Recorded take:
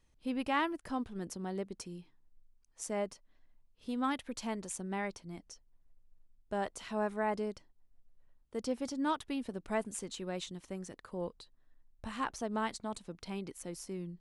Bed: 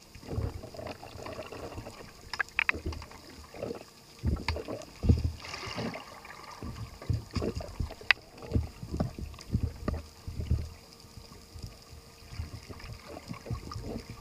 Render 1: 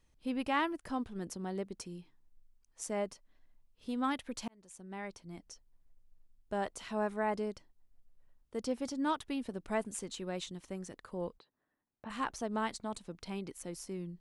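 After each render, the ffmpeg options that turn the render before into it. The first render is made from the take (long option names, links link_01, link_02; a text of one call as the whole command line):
ffmpeg -i in.wav -filter_complex "[0:a]asplit=3[link_01][link_02][link_03];[link_01]afade=type=out:start_time=11.37:duration=0.02[link_04];[link_02]highpass=200,lowpass=2200,afade=type=in:start_time=11.37:duration=0.02,afade=type=out:start_time=12.09:duration=0.02[link_05];[link_03]afade=type=in:start_time=12.09:duration=0.02[link_06];[link_04][link_05][link_06]amix=inputs=3:normalize=0,asplit=2[link_07][link_08];[link_07]atrim=end=4.48,asetpts=PTS-STARTPTS,afade=type=out:start_time=4.476:duration=0.004:curve=hsin[link_09];[link_08]atrim=start=4.48,asetpts=PTS-STARTPTS,afade=type=in:duration=1.04[link_10];[link_09][link_10]concat=n=2:v=0:a=1" out.wav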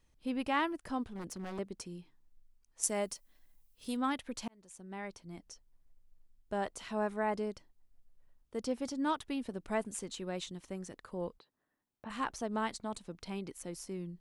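ffmpeg -i in.wav -filter_complex "[0:a]asettb=1/sr,asplit=3[link_01][link_02][link_03];[link_01]atrim=end=1.114[link_04];[link_02]atrim=start=1.11:end=1.59,asetpts=PTS-STARTPTS,afade=type=in:duration=0.004:curve=qsin,afade=type=out:start_time=0.476:duration=0.004:curve=qsin,aeval=exprs='0.0168*(abs(mod(val(0)/0.0168+3,4)-2)-1)':channel_layout=same[link_05];[link_03]atrim=start=1.586[link_06];[link_04][link_05]acrossfade=duration=0.004:curve1=hsin:curve2=qsin[link_07];[link_07][link_06]acrossfade=duration=0.004:curve1=qsin:curve2=hsin,asettb=1/sr,asplit=3[link_08][link_09][link_10];[link_08]atrim=end=2.834[link_11];[link_09]atrim=start=2.83:end=3.97,asetpts=PTS-STARTPTS,afade=type=in:duration=0.004:curve=qsin,afade=type=out:start_time=1.136:duration=0.004:curve=qsin,aemphasis=mode=production:type=75kf[link_12];[link_10]atrim=start=3.966[link_13];[link_11][link_12]acrossfade=duration=0.004:curve1=hsin:curve2=qsin[link_14];[link_14][link_13]acrossfade=duration=0.004:curve1=qsin:curve2=hsin" out.wav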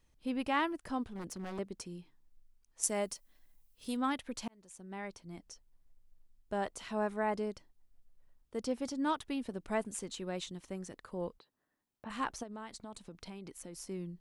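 ffmpeg -i in.wav -filter_complex "[0:a]asplit=3[link_01][link_02][link_03];[link_01]afade=type=out:start_time=12.42:duration=0.02[link_04];[link_02]acompressor=threshold=-43dB:ratio=4:attack=3.2:release=140:knee=1:detection=peak,afade=type=in:start_time=12.42:duration=0.02,afade=type=out:start_time=13.77:duration=0.02[link_05];[link_03]afade=type=in:start_time=13.77:duration=0.02[link_06];[link_04][link_05][link_06]amix=inputs=3:normalize=0" out.wav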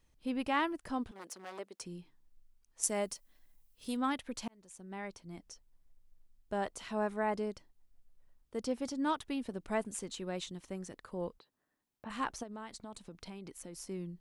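ffmpeg -i in.wav -filter_complex "[0:a]asettb=1/sr,asplit=3[link_01][link_02][link_03];[link_01]atrim=end=1.114[link_04];[link_02]atrim=start=1.11:end=1.81,asetpts=PTS-STARTPTS,afade=type=in:duration=0.004:curve=qsin,afade=type=out:start_time=0.696:duration=0.004:curve=qsin,highpass=490[link_05];[link_03]atrim=start=1.806[link_06];[link_04][link_05]acrossfade=duration=0.004:curve1=hsin:curve2=qsin[link_07];[link_07][link_06]acrossfade=duration=0.004:curve1=qsin:curve2=hsin" out.wav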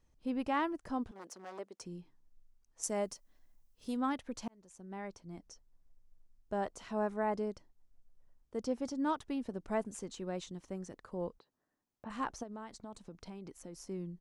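ffmpeg -i in.wav -af "firequalizer=gain_entry='entry(720,0);entry(2300,-6);entry(3700,-7);entry(6000,-2);entry(9500,-9)':delay=0.05:min_phase=1" out.wav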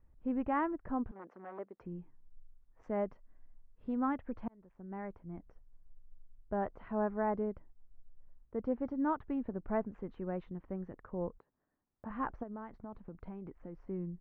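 ffmpeg -i in.wav -af "lowpass=frequency=1900:width=0.5412,lowpass=frequency=1900:width=1.3066,lowshelf=frequency=110:gain=9" out.wav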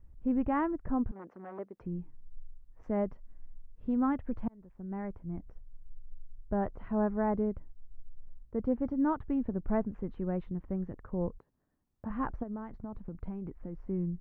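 ffmpeg -i in.wav -af "lowshelf=frequency=250:gain=11" out.wav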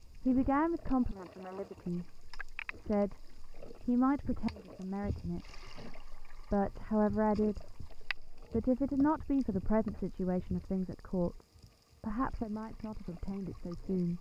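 ffmpeg -i in.wav -i bed.wav -filter_complex "[1:a]volume=-14dB[link_01];[0:a][link_01]amix=inputs=2:normalize=0" out.wav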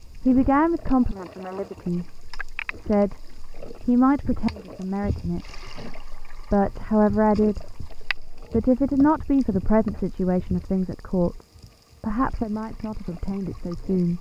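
ffmpeg -i in.wav -af "volume=11dB" out.wav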